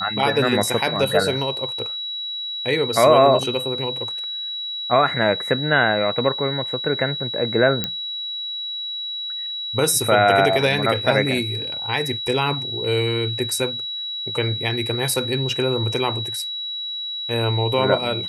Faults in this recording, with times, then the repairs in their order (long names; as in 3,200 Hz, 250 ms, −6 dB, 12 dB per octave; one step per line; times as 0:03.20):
whistle 3,900 Hz −26 dBFS
0:07.84: click −7 dBFS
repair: click removal
notch filter 3,900 Hz, Q 30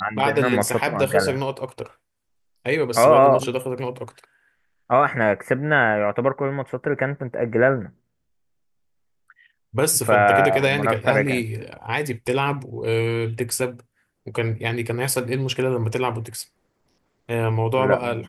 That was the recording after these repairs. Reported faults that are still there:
none of them is left